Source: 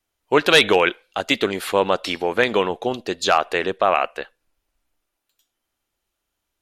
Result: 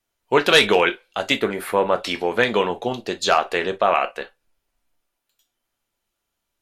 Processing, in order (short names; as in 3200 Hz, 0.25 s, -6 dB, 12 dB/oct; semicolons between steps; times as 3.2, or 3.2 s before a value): 1.34–1.98 band shelf 4600 Hz -9.5 dB; non-linear reverb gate 80 ms falling, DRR 6.5 dB; gain -1 dB